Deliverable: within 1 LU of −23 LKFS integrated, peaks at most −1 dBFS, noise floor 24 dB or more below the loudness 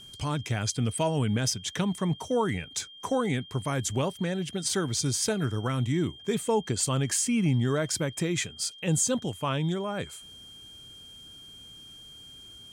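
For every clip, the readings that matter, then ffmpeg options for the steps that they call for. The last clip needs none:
interfering tone 3,200 Hz; level of the tone −46 dBFS; integrated loudness −28.5 LKFS; sample peak −15.0 dBFS; target loudness −23.0 LKFS
→ -af "bandreject=frequency=3200:width=30"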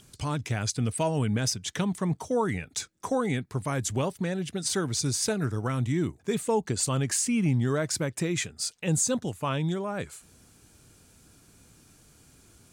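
interfering tone none found; integrated loudness −28.5 LKFS; sample peak −15.0 dBFS; target loudness −23.0 LKFS
→ -af "volume=5.5dB"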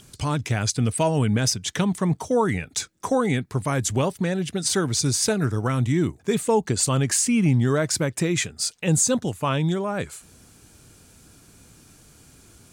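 integrated loudness −23.0 LKFS; sample peak −9.5 dBFS; background noise floor −53 dBFS

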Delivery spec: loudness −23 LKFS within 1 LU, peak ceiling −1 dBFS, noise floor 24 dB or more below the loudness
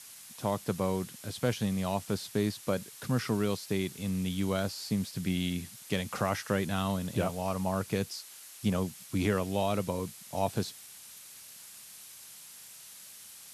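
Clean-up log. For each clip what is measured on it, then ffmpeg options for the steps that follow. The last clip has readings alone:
background noise floor −50 dBFS; target noise floor −57 dBFS; integrated loudness −32.5 LKFS; sample peak −14.5 dBFS; target loudness −23.0 LKFS
→ -af "afftdn=noise_reduction=7:noise_floor=-50"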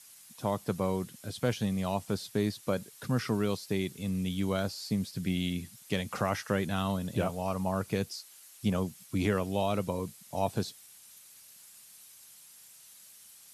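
background noise floor −55 dBFS; target noise floor −57 dBFS
→ -af "afftdn=noise_reduction=6:noise_floor=-55"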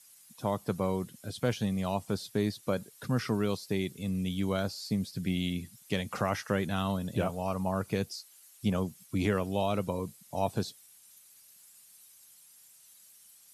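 background noise floor −58 dBFS; integrated loudness −33.0 LKFS; sample peak −15.0 dBFS; target loudness −23.0 LKFS
→ -af "volume=10dB"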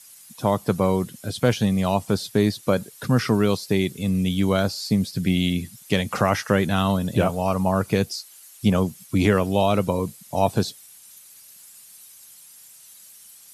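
integrated loudness −23.0 LKFS; sample peak −5.0 dBFS; background noise floor −48 dBFS

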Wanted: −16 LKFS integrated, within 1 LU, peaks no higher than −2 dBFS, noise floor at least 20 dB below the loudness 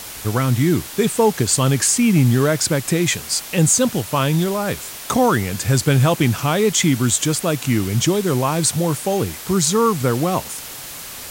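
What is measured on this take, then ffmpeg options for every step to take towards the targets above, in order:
background noise floor −34 dBFS; target noise floor −38 dBFS; integrated loudness −18.0 LKFS; sample peak −4.5 dBFS; target loudness −16.0 LKFS
→ -af "afftdn=noise_reduction=6:noise_floor=-34"
-af "volume=2dB"

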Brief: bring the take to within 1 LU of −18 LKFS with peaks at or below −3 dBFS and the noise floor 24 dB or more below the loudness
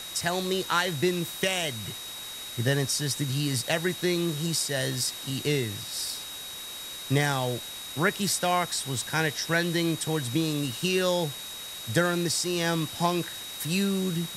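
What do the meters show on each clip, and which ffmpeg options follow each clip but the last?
interfering tone 3,800 Hz; level of the tone −39 dBFS; background noise floor −39 dBFS; target noise floor −52 dBFS; integrated loudness −28.0 LKFS; sample peak −9.0 dBFS; target loudness −18.0 LKFS
→ -af "bandreject=frequency=3800:width=30"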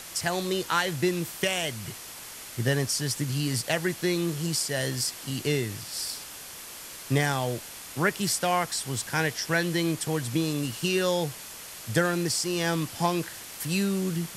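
interfering tone none found; background noise floor −42 dBFS; target noise floor −52 dBFS
→ -af "afftdn=noise_reduction=10:noise_floor=-42"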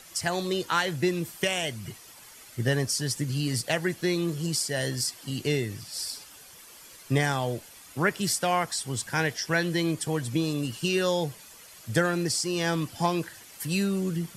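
background noise floor −50 dBFS; target noise floor −52 dBFS
→ -af "afftdn=noise_reduction=6:noise_floor=-50"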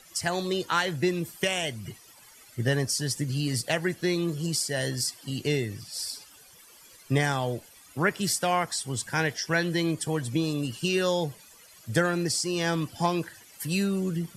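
background noise floor −53 dBFS; integrated loudness −28.0 LKFS; sample peak −9.0 dBFS; target loudness −18.0 LKFS
→ -af "volume=10dB,alimiter=limit=-3dB:level=0:latency=1"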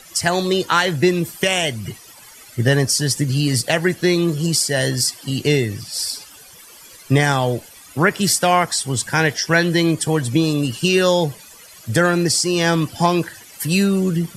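integrated loudness −18.0 LKFS; sample peak −3.0 dBFS; background noise floor −43 dBFS

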